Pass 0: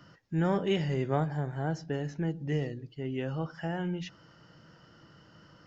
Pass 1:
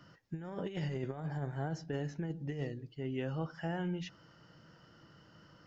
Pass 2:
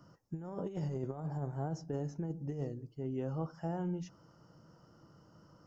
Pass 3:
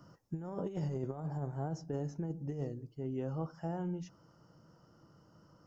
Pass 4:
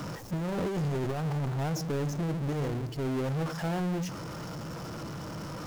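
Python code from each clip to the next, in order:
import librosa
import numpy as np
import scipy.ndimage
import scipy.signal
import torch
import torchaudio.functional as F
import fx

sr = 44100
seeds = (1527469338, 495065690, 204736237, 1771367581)

y1 = fx.over_compress(x, sr, threshold_db=-31.0, ratio=-0.5)
y1 = y1 * librosa.db_to_amplitude(-5.0)
y2 = fx.band_shelf(y1, sr, hz=2600.0, db=-14.0, octaves=1.7)
y3 = fx.rider(y2, sr, range_db=3, speed_s=2.0)
y4 = fx.power_curve(y3, sr, exponent=0.35)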